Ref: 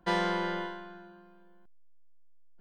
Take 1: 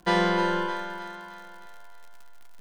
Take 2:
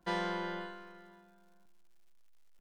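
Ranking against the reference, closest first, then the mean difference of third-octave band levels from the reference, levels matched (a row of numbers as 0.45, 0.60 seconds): 2, 1; 2.0, 5.5 decibels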